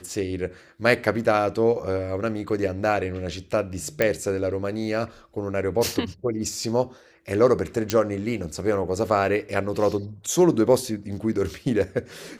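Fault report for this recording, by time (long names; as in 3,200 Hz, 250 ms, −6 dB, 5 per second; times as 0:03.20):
0:04.02: click −7 dBFS
0:07.90: click −7 dBFS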